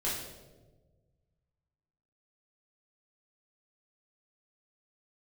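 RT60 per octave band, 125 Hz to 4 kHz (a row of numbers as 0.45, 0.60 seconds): 2.3, 1.7, 1.6, 1.1, 0.80, 0.80 seconds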